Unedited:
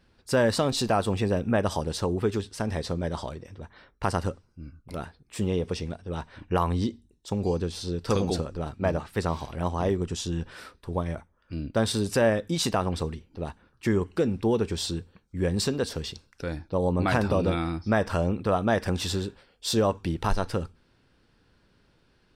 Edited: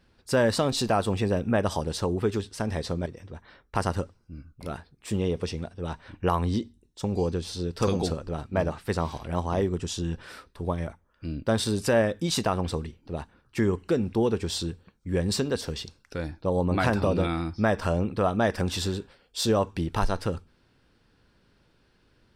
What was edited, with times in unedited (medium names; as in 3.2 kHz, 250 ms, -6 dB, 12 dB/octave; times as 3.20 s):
3.06–3.34 s: delete